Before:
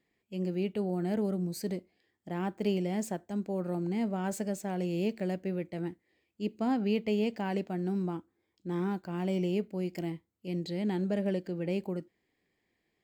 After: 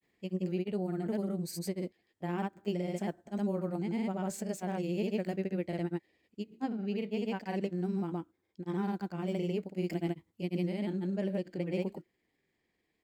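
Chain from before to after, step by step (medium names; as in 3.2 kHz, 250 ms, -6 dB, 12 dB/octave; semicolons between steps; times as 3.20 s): gain riding within 5 dB 0.5 s; granulator, pitch spread up and down by 0 st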